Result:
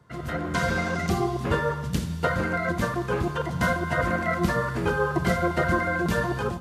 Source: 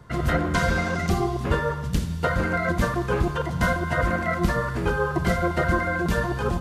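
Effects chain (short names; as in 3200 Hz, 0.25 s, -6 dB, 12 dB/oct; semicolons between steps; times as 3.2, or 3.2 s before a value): HPF 85 Hz; AGC gain up to 10.5 dB; gain -8.5 dB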